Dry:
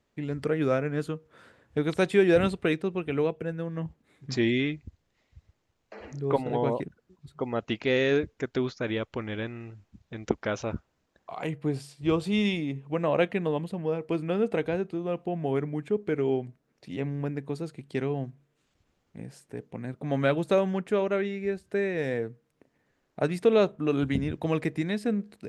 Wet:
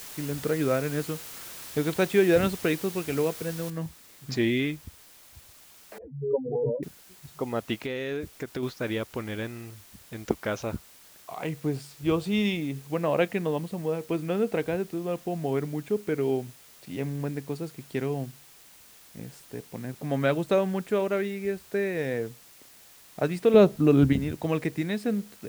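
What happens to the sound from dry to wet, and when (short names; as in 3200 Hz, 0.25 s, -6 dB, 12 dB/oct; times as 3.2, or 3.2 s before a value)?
0.83–1.86 high shelf 4700 Hz +5 dB
3.7 noise floor step -42 dB -53 dB
5.98–6.83 spectral contrast raised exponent 3.9
7.77–8.63 compressor, threshold -28 dBFS
23.54–24.13 low shelf 450 Hz +10.5 dB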